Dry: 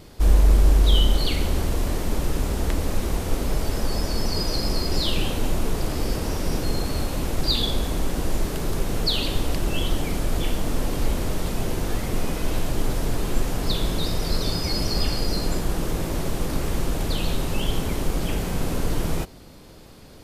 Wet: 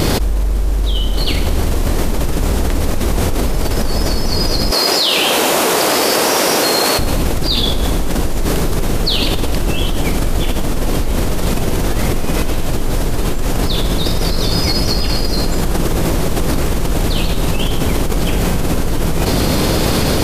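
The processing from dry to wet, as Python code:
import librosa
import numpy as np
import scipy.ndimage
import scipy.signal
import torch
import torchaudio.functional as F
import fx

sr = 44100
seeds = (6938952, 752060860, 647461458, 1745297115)

y = fx.highpass(x, sr, hz=500.0, slope=12, at=(4.71, 6.99))
y = fx.env_flatten(y, sr, amount_pct=100)
y = y * 10.0 ** (-2.5 / 20.0)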